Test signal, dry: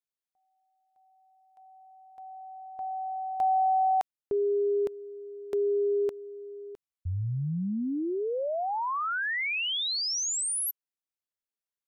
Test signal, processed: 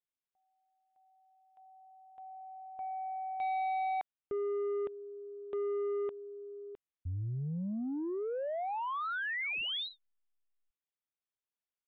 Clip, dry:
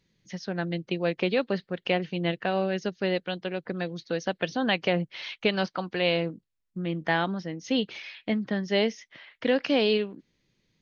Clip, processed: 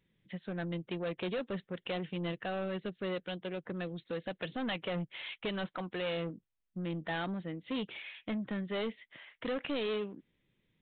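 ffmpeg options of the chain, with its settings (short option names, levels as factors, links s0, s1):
-af "aeval=exprs='0.266*(cos(1*acos(clip(val(0)/0.266,-1,1)))-cos(1*PI/2))+0.00188*(cos(4*acos(clip(val(0)/0.266,-1,1)))-cos(4*PI/2))':c=same,aresample=8000,asoftclip=type=tanh:threshold=0.0447,aresample=44100,volume=0.631"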